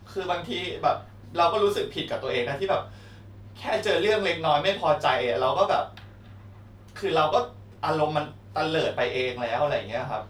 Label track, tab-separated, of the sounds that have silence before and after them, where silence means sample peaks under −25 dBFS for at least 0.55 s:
3.670000	5.830000	sound